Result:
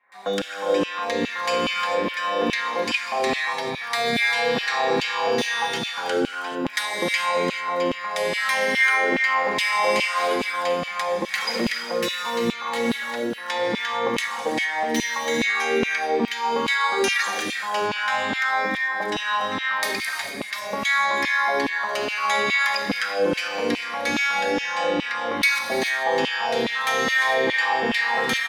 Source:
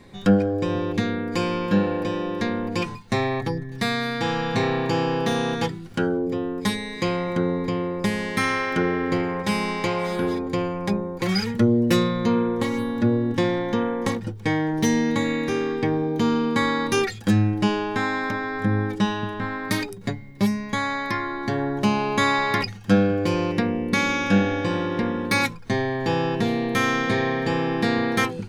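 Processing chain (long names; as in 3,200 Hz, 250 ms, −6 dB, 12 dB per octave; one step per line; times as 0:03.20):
parametric band 350 Hz −12 dB 0.83 octaves
downward compressor, threshold −27 dBFS, peak gain reduction 11.5 dB
three-band delay without the direct sound mids, highs, lows 120/540 ms, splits 160/1,200 Hz
reverb whose tail is shaped and stops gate 470 ms flat, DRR 1 dB
auto-filter high-pass saw down 2.4 Hz 260–2,900 Hz
level +6.5 dB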